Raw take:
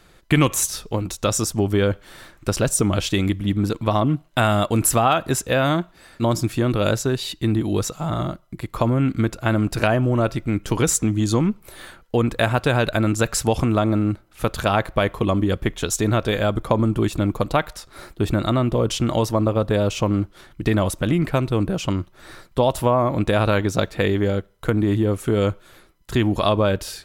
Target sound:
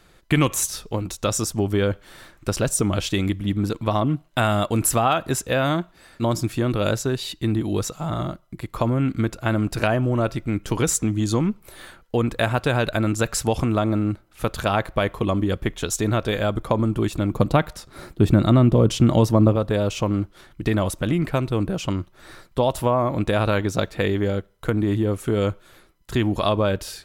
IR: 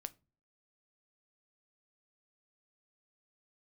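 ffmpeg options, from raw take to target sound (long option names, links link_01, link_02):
-filter_complex "[0:a]asettb=1/sr,asplit=3[link_01][link_02][link_03];[link_01]atrim=end=17.314[link_04];[link_02]atrim=start=17.31:end=19.56,asetpts=PTS-STARTPTS,afade=type=in:duration=0.004:curve=qsin,afade=type=out:start_time=2.246:duration=0.004:curve=qsin,equalizer=frequency=160:width_type=o:width=2.7:gain=8.5[link_05];[link_03]atrim=start=19.556[link_06];[link_04][link_05]acrossfade=duration=0.004:curve1=hsin:curve2=qsin[link_07];[link_07][link_06]acrossfade=duration=0.004:curve1=qsin:curve2=hsin,volume=-2dB"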